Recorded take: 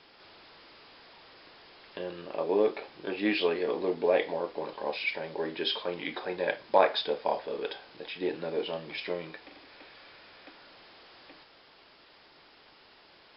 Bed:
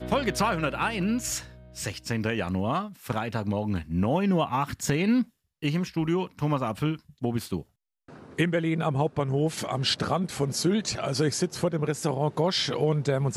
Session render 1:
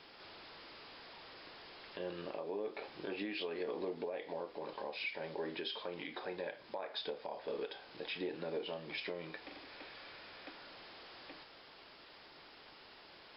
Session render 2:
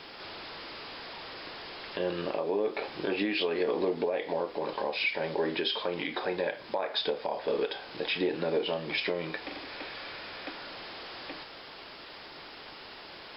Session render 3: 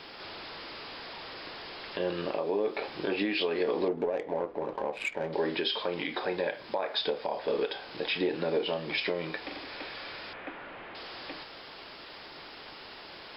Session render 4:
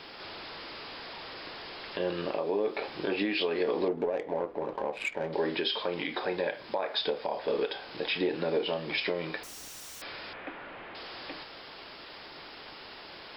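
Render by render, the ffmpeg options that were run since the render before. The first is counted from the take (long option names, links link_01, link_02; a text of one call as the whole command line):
ffmpeg -i in.wav -af "acompressor=threshold=-29dB:ratio=6,alimiter=level_in=6.5dB:limit=-24dB:level=0:latency=1:release=386,volume=-6.5dB" out.wav
ffmpeg -i in.wav -af "volume=11dB" out.wav
ffmpeg -i in.wav -filter_complex "[0:a]asettb=1/sr,asplit=3[link_01][link_02][link_03];[link_01]atrim=end=3.884[link_04];[link_02]atrim=start=3.88:end=5.33,asetpts=PTS-STARTPTS,afade=type=in:duration=0.004:curve=qsin,afade=type=out:start_time=1.446:duration=0.004:curve=qsin,adynamicsmooth=sensitivity=1.5:basefreq=990[link_05];[link_03]atrim=start=5.326[link_06];[link_04][link_05]acrossfade=duration=0.004:curve1=hsin:curve2=qsin[link_07];[link_07][link_06]acrossfade=duration=0.004:curve1=qsin:curve2=hsin,asettb=1/sr,asplit=3[link_08][link_09][link_10];[link_08]atrim=end=10.334[link_11];[link_09]atrim=start=10.33:end=10.95,asetpts=PTS-STARTPTS,afade=type=in:duration=0.004:curve=qsin,afade=type=out:start_time=0.616:duration=0.004:curve=qsin,lowpass=frequency=2600:width=0.5412,lowpass=frequency=2600:width=1.3066[link_12];[link_10]atrim=start=10.946[link_13];[link_11][link_12]acrossfade=duration=0.004:curve1=hsin:curve2=qsin[link_14];[link_14][link_13]acrossfade=duration=0.004:curve1=qsin:curve2=hsin" out.wav
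ffmpeg -i in.wav -filter_complex "[0:a]asettb=1/sr,asplit=3[link_01][link_02][link_03];[link_01]atrim=end=9.434[link_04];[link_02]atrim=start=9.43:end=10.02,asetpts=PTS-STARTPTS,afade=type=in:duration=0.004:curve=qsin,afade=type=out:start_time=0.586:duration=0.004:curve=qsin,aeval=exprs='(mod(133*val(0)+1,2)-1)/133':channel_layout=same[link_05];[link_03]atrim=start=10.016[link_06];[link_04][link_05]acrossfade=duration=0.004:curve1=hsin:curve2=qsin[link_07];[link_07][link_06]acrossfade=duration=0.004:curve1=qsin:curve2=hsin" out.wav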